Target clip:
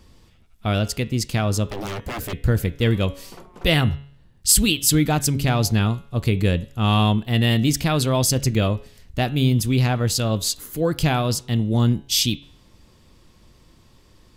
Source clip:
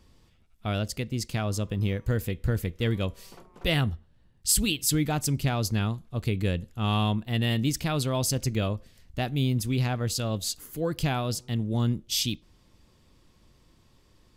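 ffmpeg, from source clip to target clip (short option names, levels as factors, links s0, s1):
-filter_complex "[0:a]bandreject=f=140.1:t=h:w=4,bandreject=f=280.2:t=h:w=4,bandreject=f=420.3:t=h:w=4,bandreject=f=560.4:t=h:w=4,bandreject=f=700.5:t=h:w=4,bandreject=f=840.6:t=h:w=4,bandreject=f=980.7:t=h:w=4,bandreject=f=1120.8:t=h:w=4,bandreject=f=1260.9:t=h:w=4,bandreject=f=1401:t=h:w=4,bandreject=f=1541.1:t=h:w=4,bandreject=f=1681.2:t=h:w=4,bandreject=f=1821.3:t=h:w=4,bandreject=f=1961.4:t=h:w=4,bandreject=f=2101.5:t=h:w=4,bandreject=f=2241.6:t=h:w=4,bandreject=f=2381.7:t=h:w=4,bandreject=f=2521.8:t=h:w=4,bandreject=f=2661.9:t=h:w=4,bandreject=f=2802:t=h:w=4,bandreject=f=2942.1:t=h:w=4,bandreject=f=3082.2:t=h:w=4,bandreject=f=3222.3:t=h:w=4,bandreject=f=3362.4:t=h:w=4,bandreject=f=3502.5:t=h:w=4,bandreject=f=3642.6:t=h:w=4,bandreject=f=3782.7:t=h:w=4,bandreject=f=3922.8:t=h:w=4,bandreject=f=4062.9:t=h:w=4,asettb=1/sr,asplit=3[s0][s1][s2];[s0]atrim=end=1.664[s3];[s1]atrim=start=1.66:end=2.33,asetpts=PTS-STARTPTS,afade=t=in:d=0.004:c=qsin,afade=t=out:st=0.666:d=0.004:c=qsin,aeval=exprs='0.0266*(abs(mod(val(0)/0.0266+3,4)-2)-1)':c=same[s4];[s2]atrim=start=2.326[s5];[s3][s4]acrossfade=d=0.004:c1=hsin:c2=qsin[s6];[s6][s5]acrossfade=d=0.004:c1=qsin:c2=hsin,volume=2.37"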